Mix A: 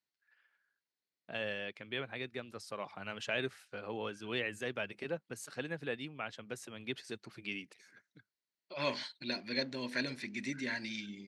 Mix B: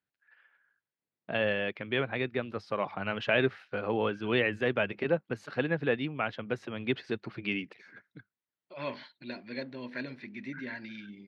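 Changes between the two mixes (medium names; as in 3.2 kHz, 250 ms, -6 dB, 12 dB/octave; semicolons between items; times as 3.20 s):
first voice +11.5 dB; master: add distance through air 320 m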